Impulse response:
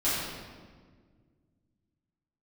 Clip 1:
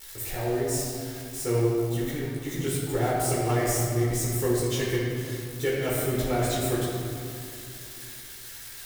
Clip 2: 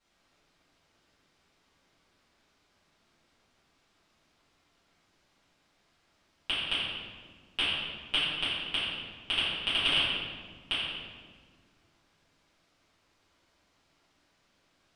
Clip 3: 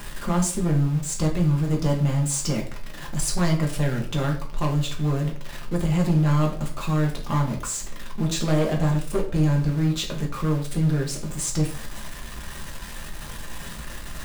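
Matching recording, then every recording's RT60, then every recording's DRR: 2; 2.6 s, 1.7 s, 0.50 s; -7.0 dB, -12.5 dB, -1.0 dB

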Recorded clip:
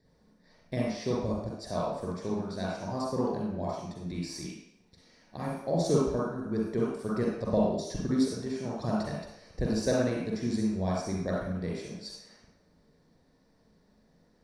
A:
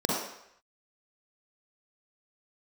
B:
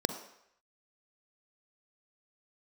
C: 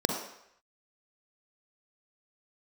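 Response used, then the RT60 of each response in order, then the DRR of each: A; 0.75 s, 0.75 s, 0.75 s; -4.5 dB, 8.0 dB, 2.0 dB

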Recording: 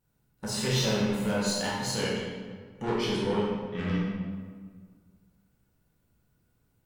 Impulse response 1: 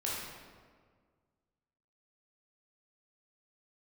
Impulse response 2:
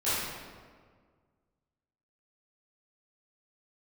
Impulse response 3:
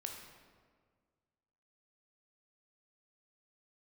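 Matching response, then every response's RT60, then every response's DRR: 1; 1.7 s, 1.7 s, 1.7 s; -6.5 dB, -15.0 dB, 1.5 dB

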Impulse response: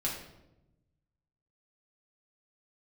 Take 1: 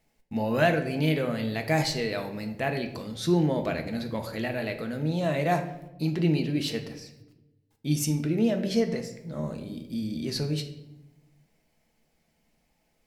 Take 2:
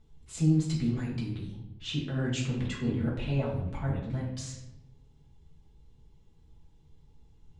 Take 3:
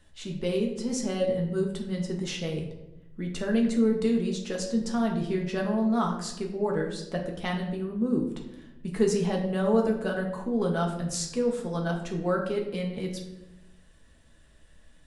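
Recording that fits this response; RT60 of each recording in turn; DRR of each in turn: 2; 0.95 s, 0.90 s, 0.95 s; 4.5 dB, -5.0 dB, 0.0 dB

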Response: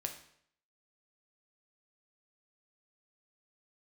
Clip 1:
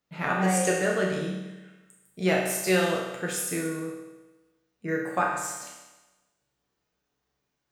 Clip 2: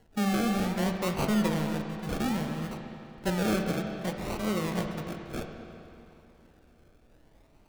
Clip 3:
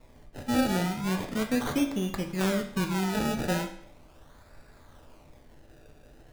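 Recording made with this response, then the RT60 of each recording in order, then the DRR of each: 3; 1.1 s, 2.8 s, 0.65 s; -3.0 dB, 3.5 dB, 4.0 dB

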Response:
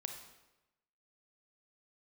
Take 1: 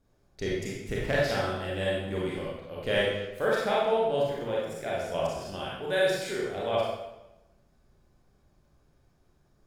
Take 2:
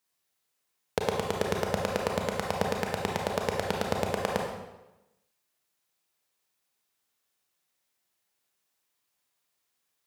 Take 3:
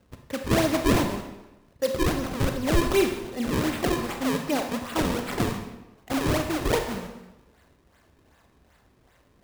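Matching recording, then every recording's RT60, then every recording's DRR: 3; 1.0 s, 1.0 s, 1.0 s; -6.0 dB, 0.0 dB, 4.0 dB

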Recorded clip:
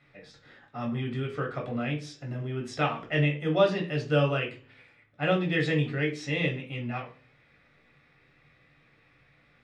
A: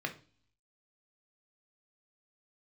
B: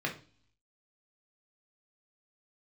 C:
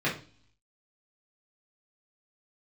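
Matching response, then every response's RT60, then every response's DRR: B; 0.40 s, no single decay rate, 0.40 s; 3.5 dB, -1.0 dB, -8.0 dB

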